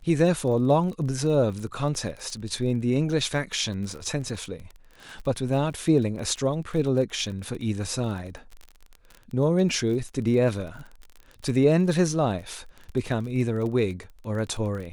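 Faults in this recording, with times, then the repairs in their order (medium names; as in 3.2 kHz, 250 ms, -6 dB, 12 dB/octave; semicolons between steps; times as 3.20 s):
crackle 28 per s -33 dBFS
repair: de-click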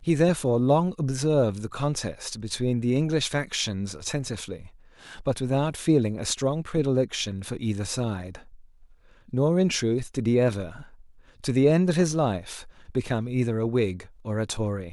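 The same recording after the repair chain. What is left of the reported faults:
nothing left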